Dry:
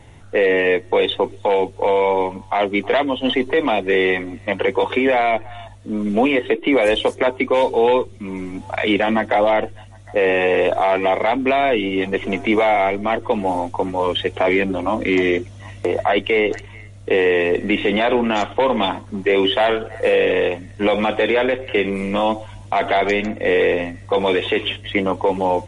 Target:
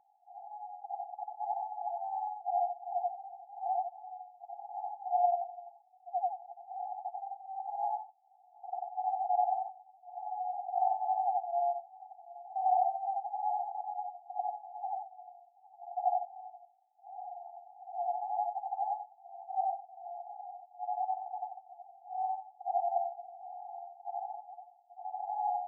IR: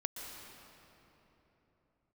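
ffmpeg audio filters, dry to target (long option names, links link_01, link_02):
-af "afftfilt=real='re':imag='-im':win_size=8192:overlap=0.75,aeval=exprs='val(0)+0.0126*(sin(2*PI*50*n/s)+sin(2*PI*2*50*n/s)/2+sin(2*PI*3*50*n/s)/3+sin(2*PI*4*50*n/s)/4+sin(2*PI*5*50*n/s)/5)':channel_layout=same,asuperpass=centerf=770:order=20:qfactor=4.8,volume=-2.5dB"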